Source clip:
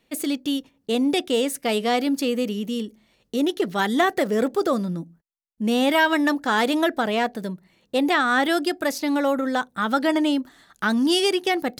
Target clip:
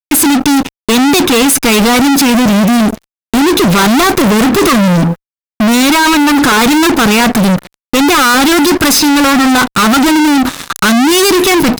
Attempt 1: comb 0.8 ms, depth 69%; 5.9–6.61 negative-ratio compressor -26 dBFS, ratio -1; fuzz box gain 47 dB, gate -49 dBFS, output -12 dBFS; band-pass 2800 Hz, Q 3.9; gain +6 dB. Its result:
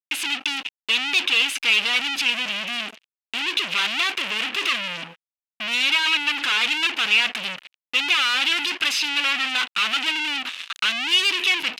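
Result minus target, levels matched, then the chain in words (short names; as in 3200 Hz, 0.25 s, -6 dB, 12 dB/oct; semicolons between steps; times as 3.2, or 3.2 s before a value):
2000 Hz band +4.5 dB
comb 0.8 ms, depth 69%; 5.9–6.61 negative-ratio compressor -26 dBFS, ratio -1; fuzz box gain 47 dB, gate -49 dBFS, output -12 dBFS; gain +6 dB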